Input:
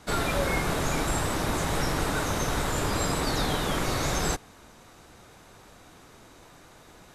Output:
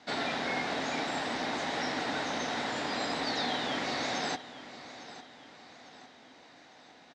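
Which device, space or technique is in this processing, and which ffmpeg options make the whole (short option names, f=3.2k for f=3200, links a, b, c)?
guitar cabinet: -af "afftfilt=real='re*lt(hypot(re,im),0.282)':imag='im*lt(hypot(re,im),0.282)':win_size=1024:overlap=0.75,highpass=51,bass=f=250:g=-9,treble=f=4k:g=13,highpass=89,equalizer=f=94:t=q:w=4:g=-4,equalizer=f=250:t=q:w=4:g=10,equalizer=f=380:t=q:w=4:g=-3,equalizer=f=750:t=q:w=4:g=6,equalizer=f=1.2k:t=q:w=4:g=-4,equalizer=f=1.9k:t=q:w=4:g=6,lowpass=f=4.3k:w=0.5412,lowpass=f=4.3k:w=1.3066,aecho=1:1:854|1708|2562|3416:0.178|0.0782|0.0344|0.0151,volume=-5.5dB"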